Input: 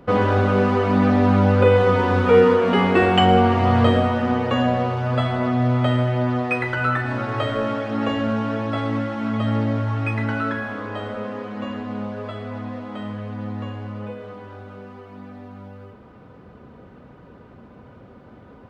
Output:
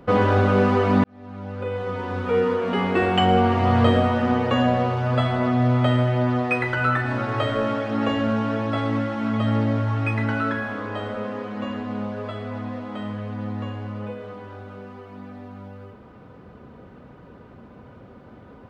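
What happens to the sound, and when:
1.04–4.22 fade in

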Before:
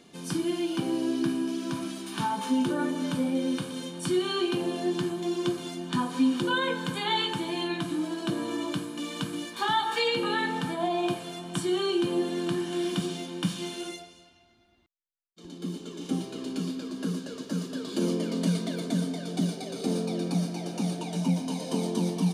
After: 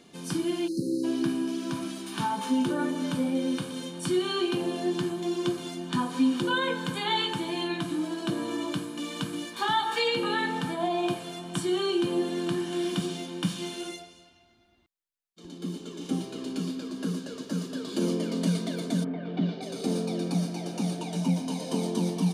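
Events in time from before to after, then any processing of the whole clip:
0.68–1.04 spectral delete 600–3900 Hz
19.03–19.61 LPF 2000 Hz -> 4200 Hz 24 dB/oct

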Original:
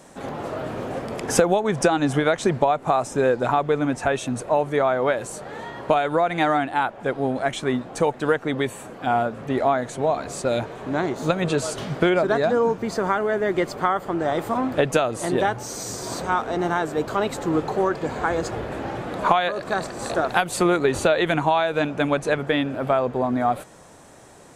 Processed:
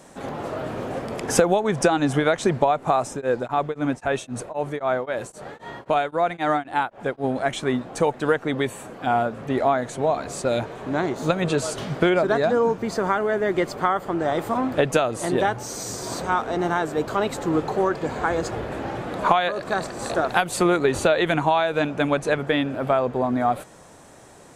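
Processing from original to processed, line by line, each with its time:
3.09–7.24 beating tremolo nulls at 3.8 Hz

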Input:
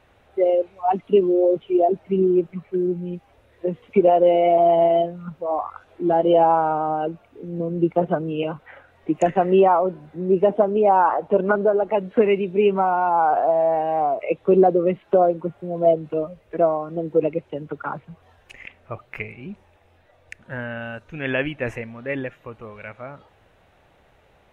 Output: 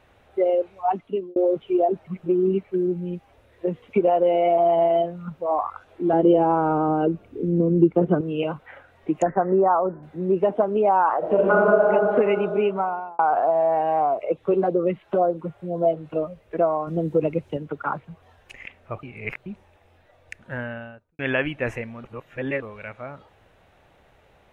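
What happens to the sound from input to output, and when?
0.74–1.36 fade out
2.07–2.63 reverse
6.13–8.21 resonant low shelf 520 Hz +9 dB, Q 1.5
9.22–10.03 steep low-pass 1800 Hz 48 dB/oct
11.18–11.89 reverb throw, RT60 2.5 s, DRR -5.5 dB
12.49–13.19 fade out
14.17–16.16 LFO notch sine 2 Hz 210–2600 Hz
16.87–17.57 tone controls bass +8 dB, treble +9 dB
19.03–19.46 reverse
20.54–21.19 studio fade out
22.04–22.62 reverse
whole clip: dynamic EQ 1200 Hz, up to +5 dB, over -30 dBFS, Q 1.1; compressor 2:1, threshold -19 dBFS

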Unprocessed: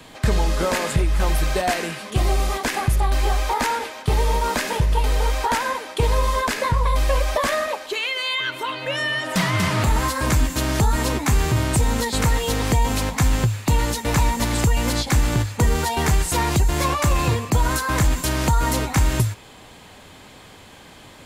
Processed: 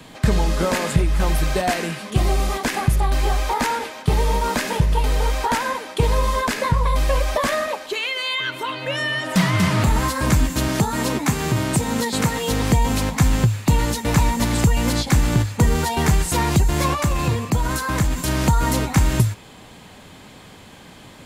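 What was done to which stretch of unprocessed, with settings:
10.68–12.51 HPF 130 Hz
16.94–18.28 compressor 1.5:1, threshold -22 dBFS
whole clip: bell 180 Hz +5.5 dB 1.2 oct

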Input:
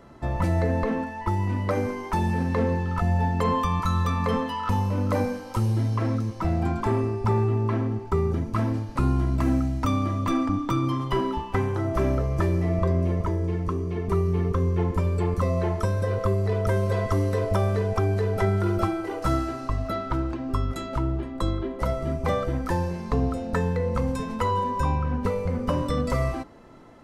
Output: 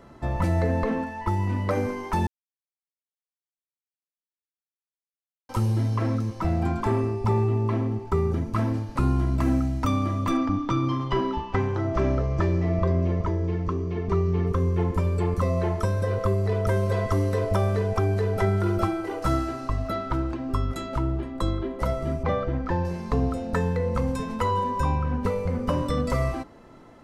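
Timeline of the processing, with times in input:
2.27–5.49 mute
7.13–8.07 bell 1500 Hz -7.5 dB 0.34 oct
10.37–14.47 LPF 6300 Hz 24 dB/oct
22.23–22.85 air absorption 190 m

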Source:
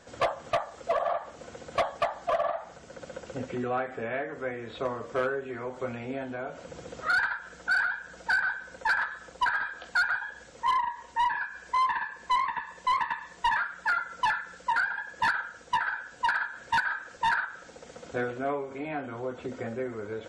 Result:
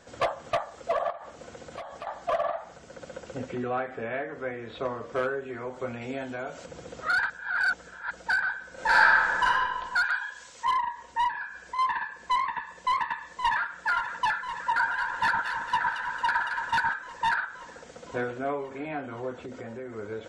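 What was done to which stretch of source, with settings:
1.1–2.07 compressor 12:1, threshold -36 dBFS
3.53–5.13 LPF 6300 Hz
6.01–6.66 high shelf 3200 Hz +10 dB
7.3–8.11 reverse
8.73–9.43 reverb throw, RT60 1.8 s, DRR -9.5 dB
10.04–10.65 tilt shelf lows -8.5 dB, about 1300 Hz
11.29–11.79 compressor, threshold -31 dBFS
12.66–13.7 echo throw 0.52 s, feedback 80%, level -9.5 dB
14.57–16.94 echo with dull and thin repeats by turns 0.112 s, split 1300 Hz, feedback 70%, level -2.5 dB
19.41–19.96 compressor 3:1, threshold -36 dBFS

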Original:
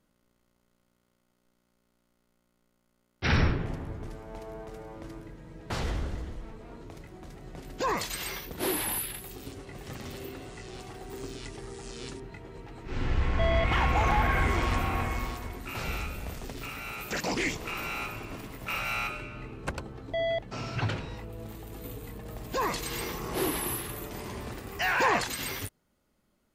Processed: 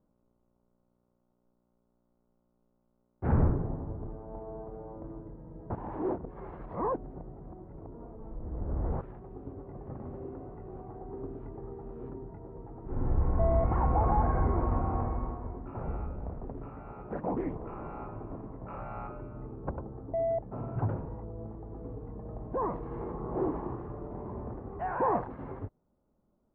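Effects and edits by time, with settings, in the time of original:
5.75–9.01 reverse
whole clip: LPF 1000 Hz 24 dB/oct

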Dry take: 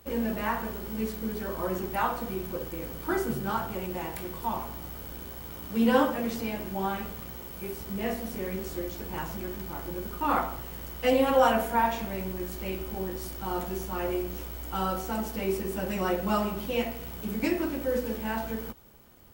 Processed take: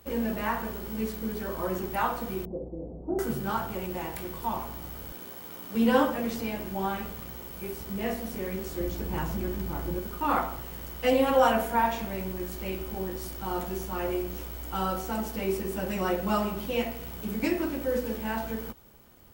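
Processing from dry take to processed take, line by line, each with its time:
2.45–3.19 Chebyshev low-pass 710 Hz, order 4
5.12–5.75 Bessel high-pass 200 Hz
8.8–9.99 low shelf 350 Hz +7.5 dB

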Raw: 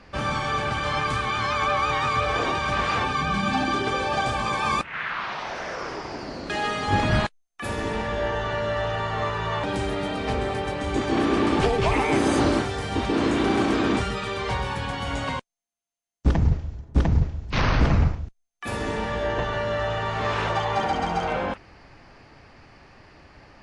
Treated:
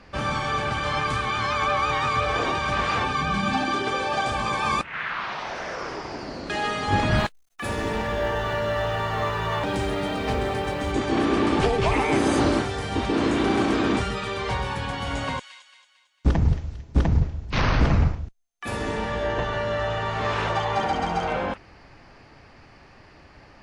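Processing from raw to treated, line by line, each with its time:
3.57–4.31 low shelf 130 Hz -9 dB
7.18–10.92 G.711 law mismatch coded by mu
14.81–17.07 thin delay 0.225 s, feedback 42%, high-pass 2400 Hz, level -8.5 dB

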